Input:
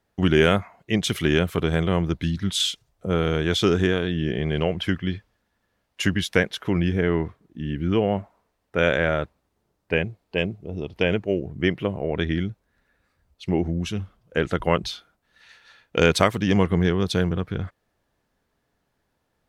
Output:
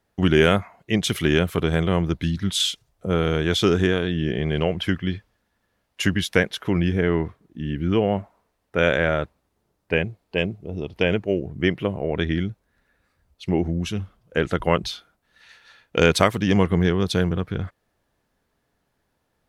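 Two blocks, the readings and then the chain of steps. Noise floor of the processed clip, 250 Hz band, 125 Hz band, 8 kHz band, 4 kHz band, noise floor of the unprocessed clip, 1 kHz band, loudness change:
−73 dBFS, +1.0 dB, +1.0 dB, +1.5 dB, +1.0 dB, −74 dBFS, +1.0 dB, +1.0 dB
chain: parametric band 11,000 Hz +3 dB 0.33 octaves
level +1 dB

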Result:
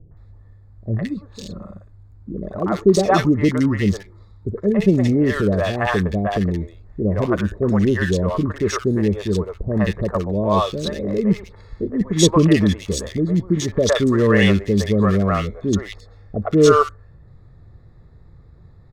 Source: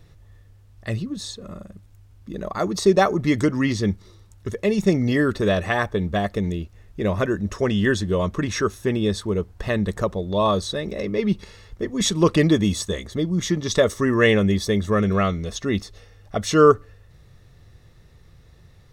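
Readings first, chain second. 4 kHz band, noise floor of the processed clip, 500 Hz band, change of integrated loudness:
+0.5 dB, −46 dBFS, +2.0 dB, +3.0 dB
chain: adaptive Wiener filter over 15 samples
three-band delay without the direct sound lows, mids, highs 110/170 ms, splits 540/1,800 Hz
level +4.5 dB

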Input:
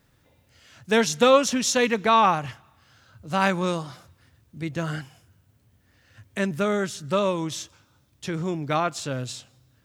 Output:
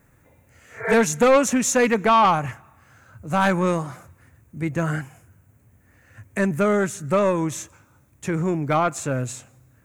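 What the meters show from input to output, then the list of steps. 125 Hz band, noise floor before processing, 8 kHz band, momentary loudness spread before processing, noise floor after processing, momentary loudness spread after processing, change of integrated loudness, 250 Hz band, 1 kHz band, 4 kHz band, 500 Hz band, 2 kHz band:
+5.0 dB, −63 dBFS, +3.0 dB, 17 LU, −58 dBFS, 16 LU, +2.5 dB, +4.0 dB, +2.5 dB, −5.0 dB, +3.0 dB, +2.5 dB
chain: healed spectral selection 0:00.69–0:00.91, 280–2,400 Hz both
flat-topped bell 4,000 Hz −13.5 dB 1.1 octaves
soft clipping −16 dBFS, distortion −12 dB
level +5.5 dB

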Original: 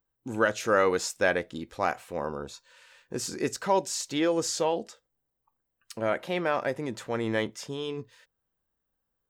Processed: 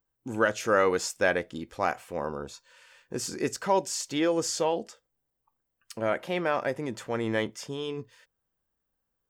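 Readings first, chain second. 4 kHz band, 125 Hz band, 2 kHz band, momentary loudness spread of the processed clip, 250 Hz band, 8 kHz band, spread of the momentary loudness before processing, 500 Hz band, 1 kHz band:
−0.5 dB, 0.0 dB, 0.0 dB, 14 LU, 0.0 dB, 0.0 dB, 14 LU, 0.0 dB, 0.0 dB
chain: notch filter 3,900 Hz, Q 12

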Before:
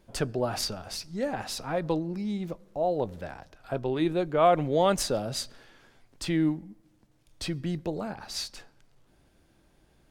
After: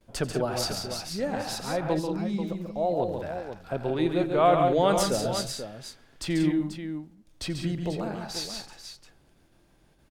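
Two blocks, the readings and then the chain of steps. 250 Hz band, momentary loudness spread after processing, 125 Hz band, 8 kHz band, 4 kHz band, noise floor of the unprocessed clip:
+2.0 dB, 16 LU, +2.0 dB, +2.0 dB, +2.0 dB, −64 dBFS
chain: noise gate with hold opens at −53 dBFS
on a send: multi-tap delay 87/139/180/186/488 ms −17/−6/−12/−12/−9.5 dB

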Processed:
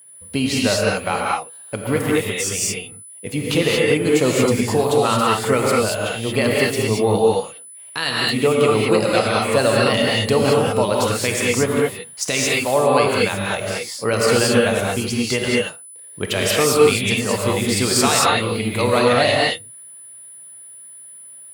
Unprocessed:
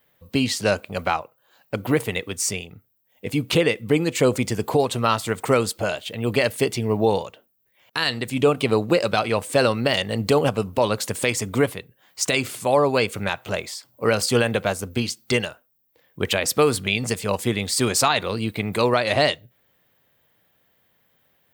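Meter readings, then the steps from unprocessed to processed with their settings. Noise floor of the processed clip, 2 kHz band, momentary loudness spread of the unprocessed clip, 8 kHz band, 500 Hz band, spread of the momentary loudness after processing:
−40 dBFS, +4.5 dB, 8 LU, +5.5 dB, +4.5 dB, 18 LU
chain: steady tone 10,000 Hz −43 dBFS
reverb whose tail is shaped and stops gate 250 ms rising, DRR −4 dB
level −1 dB

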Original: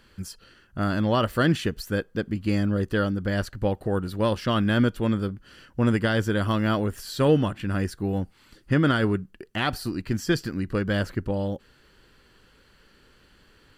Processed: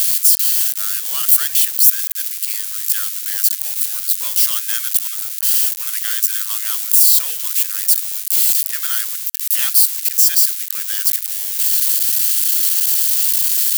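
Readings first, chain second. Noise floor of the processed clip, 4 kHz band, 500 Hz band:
−26 dBFS, +12.5 dB, below −25 dB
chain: spike at every zero crossing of −16 dBFS
high-pass filter 1,400 Hz 12 dB per octave
spectral tilt +4.5 dB per octave
level −5 dB

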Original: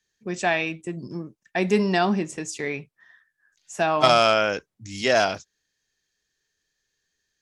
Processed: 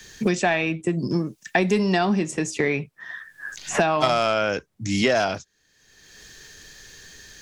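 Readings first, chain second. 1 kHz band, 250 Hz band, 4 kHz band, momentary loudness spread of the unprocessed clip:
−1.0 dB, +4.0 dB, −2.0 dB, 18 LU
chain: low-shelf EQ 180 Hz +4.5 dB
in parallel at −5 dB: soft clipping −14.5 dBFS, distortion −13 dB
on the sum: multiband upward and downward compressor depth 100%
level −3 dB

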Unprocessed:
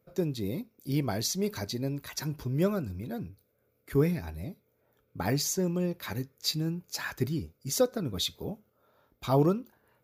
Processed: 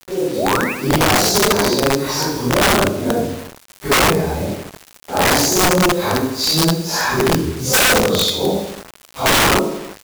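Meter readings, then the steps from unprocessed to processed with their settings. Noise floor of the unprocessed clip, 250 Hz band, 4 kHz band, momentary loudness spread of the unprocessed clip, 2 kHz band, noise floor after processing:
−73 dBFS, +12.0 dB, +18.5 dB, 12 LU, +24.0 dB, −47 dBFS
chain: random phases in long frames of 200 ms
high-shelf EQ 10,000 Hz −7 dB
in parallel at +2 dB: downward compressor 8 to 1, threshold −36 dBFS, peak gain reduction 17 dB
on the sum: sound drawn into the spectrogram rise, 0:00.35–0:00.73, 470–2,800 Hz −33 dBFS
harmonic generator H 2 −22 dB, 5 −31 dB, 6 −36 dB, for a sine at −10 dBFS
automatic gain control gain up to 10 dB
chorus effect 1 Hz, delay 19 ms, depth 6.2 ms
surface crackle 120 per second −30 dBFS
octave-band graphic EQ 125/500/1,000/2,000 Hz −6/+6/+6/−5 dB
on a send: repeating echo 79 ms, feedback 58%, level −9 dB
on the sum: bit-depth reduction 6 bits, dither none
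wrap-around overflow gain 12 dB
level +4 dB

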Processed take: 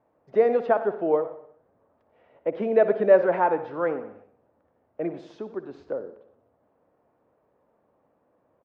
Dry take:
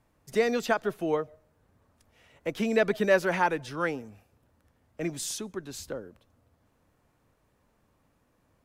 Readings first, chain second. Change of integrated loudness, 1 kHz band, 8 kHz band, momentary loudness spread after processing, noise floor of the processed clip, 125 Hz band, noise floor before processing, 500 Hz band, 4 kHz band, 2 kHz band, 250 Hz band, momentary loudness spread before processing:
+4.5 dB, +4.0 dB, below −30 dB, 18 LU, −69 dBFS, −4.0 dB, −70 dBFS, +6.5 dB, below −15 dB, −4.5 dB, 0.0 dB, 15 LU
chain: resonant band-pass 580 Hz, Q 1.3
high-frequency loss of the air 240 metres
on a send: repeating echo 60 ms, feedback 59%, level −14.5 dB
on the sum: feedback echo with a swinging delay time 92 ms, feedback 32%, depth 127 cents, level −16 dB
level +8 dB

